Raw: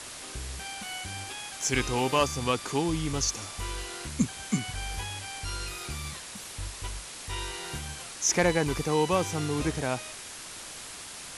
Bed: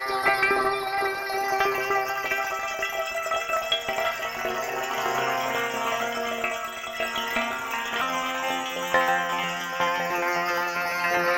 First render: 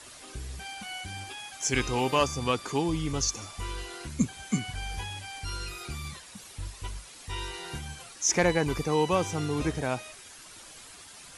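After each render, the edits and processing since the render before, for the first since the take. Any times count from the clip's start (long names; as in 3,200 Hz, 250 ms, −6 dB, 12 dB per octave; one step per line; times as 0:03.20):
broadband denoise 9 dB, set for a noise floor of −42 dBFS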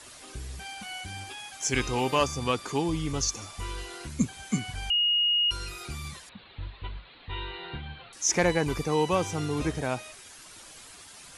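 0:04.90–0:05.51: beep over 2,870 Hz −21 dBFS
0:06.29–0:08.13: Butterworth low-pass 4,200 Hz 96 dB per octave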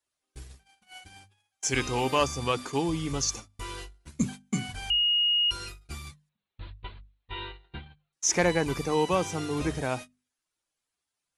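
noise gate −36 dBFS, range −38 dB
mains-hum notches 50/100/150/200/250 Hz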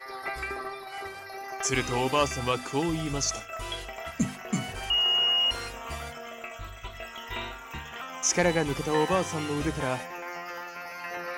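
mix in bed −12.5 dB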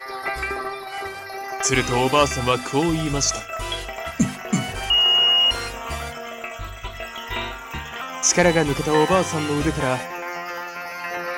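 level +7.5 dB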